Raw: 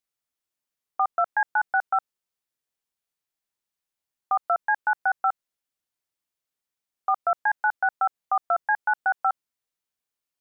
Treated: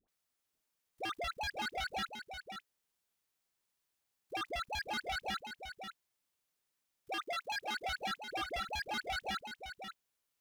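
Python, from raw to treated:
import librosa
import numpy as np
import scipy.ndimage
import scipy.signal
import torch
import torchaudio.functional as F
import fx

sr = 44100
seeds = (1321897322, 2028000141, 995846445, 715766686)

p1 = fx.dispersion(x, sr, late='highs', ms=86.0, hz=860.0)
p2 = fx.over_compress(p1, sr, threshold_db=-33.0, ratio=-1.0)
p3 = p1 + (p2 * librosa.db_to_amplitude(-2.0))
p4 = 10.0 ** (-21.5 / 20.0) * (np.abs((p3 / 10.0 ** (-21.5 / 20.0) + 3.0) % 4.0 - 2.0) - 1.0)
p5 = fx.highpass(p4, sr, hz=280.0, slope=12, at=(7.09, 7.75))
p6 = fx.level_steps(p5, sr, step_db=24)
p7 = p6 + 10.0 ** (-8.0 / 20.0) * np.pad(p6, (int(535 * sr / 1000.0), 0))[:len(p6)]
y = p7 * librosa.db_to_amplitude(10.5)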